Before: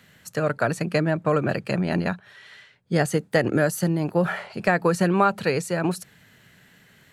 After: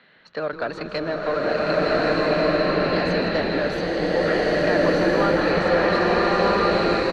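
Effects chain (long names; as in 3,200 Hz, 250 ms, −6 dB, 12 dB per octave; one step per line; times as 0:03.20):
low-pass that shuts in the quiet parts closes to 2,800 Hz, open at −18.5 dBFS
high-pass filter 340 Hz 12 dB per octave
parametric band 4,100 Hz +14 dB 0.32 octaves
in parallel at +1 dB: downward compressor, threshold −31 dBFS, peak gain reduction 15.5 dB
on the sum: soft clipping −14 dBFS, distortion −14 dB
high-frequency loss of the air 240 metres
on a send: echo with shifted repeats 159 ms, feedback 51%, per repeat −140 Hz, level −11 dB
on the sum: slow-attack reverb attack 1,460 ms, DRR −8 dB
level −2.5 dB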